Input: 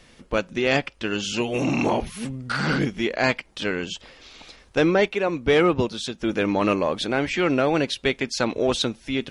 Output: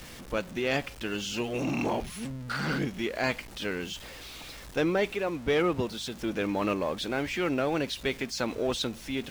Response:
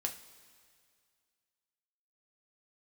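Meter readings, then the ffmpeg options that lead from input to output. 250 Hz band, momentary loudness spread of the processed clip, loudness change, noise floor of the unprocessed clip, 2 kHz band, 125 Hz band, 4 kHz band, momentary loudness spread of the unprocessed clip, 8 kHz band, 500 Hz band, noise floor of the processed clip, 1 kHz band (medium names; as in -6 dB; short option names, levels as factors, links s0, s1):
-7.0 dB, 8 LU, -7.0 dB, -54 dBFS, -7.0 dB, -7.0 dB, -6.5 dB, 8 LU, -5.0 dB, -7.0 dB, -46 dBFS, -7.0 dB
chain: -af "aeval=exprs='val(0)+0.5*0.0224*sgn(val(0))':c=same,aeval=exprs='val(0)+0.00501*(sin(2*PI*60*n/s)+sin(2*PI*2*60*n/s)/2+sin(2*PI*3*60*n/s)/3+sin(2*PI*4*60*n/s)/4+sin(2*PI*5*60*n/s)/5)':c=same,volume=0.398"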